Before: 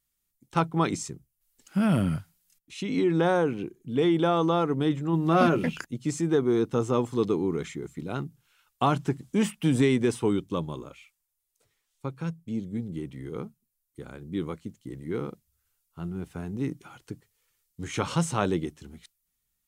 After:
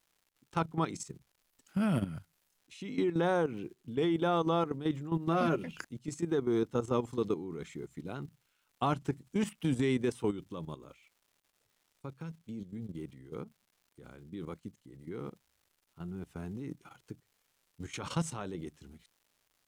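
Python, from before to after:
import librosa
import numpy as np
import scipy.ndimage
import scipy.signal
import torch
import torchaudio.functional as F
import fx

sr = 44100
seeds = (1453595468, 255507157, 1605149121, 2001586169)

y = fx.dmg_crackle(x, sr, seeds[0], per_s=310.0, level_db=-50.0)
y = fx.wow_flutter(y, sr, seeds[1], rate_hz=2.1, depth_cents=29.0)
y = fx.level_steps(y, sr, step_db=12)
y = y * 10.0 ** (-4.0 / 20.0)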